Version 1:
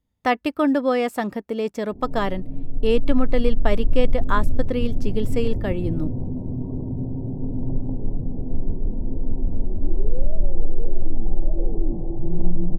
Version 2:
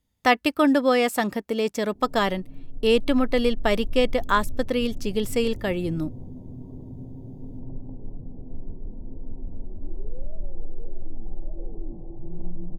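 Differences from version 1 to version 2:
background -11.5 dB; master: add high shelf 2300 Hz +9.5 dB

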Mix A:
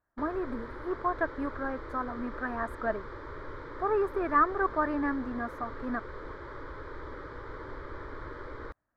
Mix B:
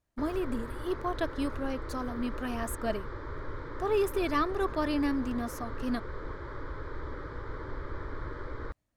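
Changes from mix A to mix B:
speech: remove EQ curve 540 Hz 0 dB, 1600 Hz +9 dB, 3000 Hz -21 dB; master: add tone controls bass +6 dB, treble +2 dB

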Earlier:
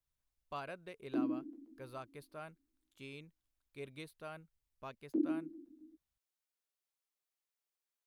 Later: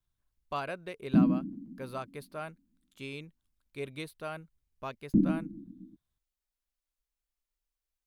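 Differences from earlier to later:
speech +8.5 dB; background: remove steep high-pass 310 Hz 48 dB/oct

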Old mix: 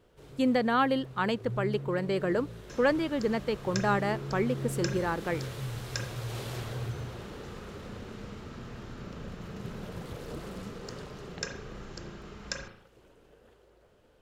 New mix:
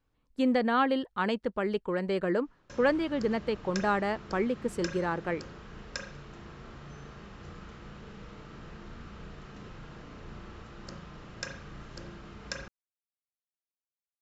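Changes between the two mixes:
first sound: muted; master: add air absorption 58 m

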